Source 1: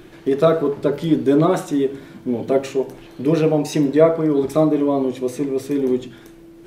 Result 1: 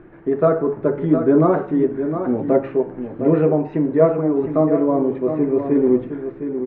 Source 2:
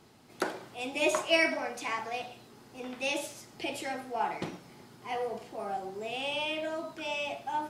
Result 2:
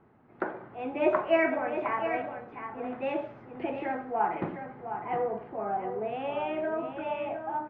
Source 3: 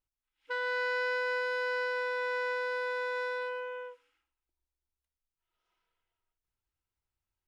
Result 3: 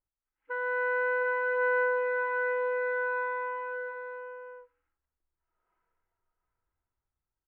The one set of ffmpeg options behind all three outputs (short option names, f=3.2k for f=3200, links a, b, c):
-filter_complex "[0:a]lowpass=f=1.8k:w=0.5412,lowpass=f=1.8k:w=1.3066,dynaudnorm=f=170:g=7:m=5.5dB,asplit=2[a][b];[b]aecho=0:1:711:0.376[c];[a][c]amix=inputs=2:normalize=0,volume=-1.5dB"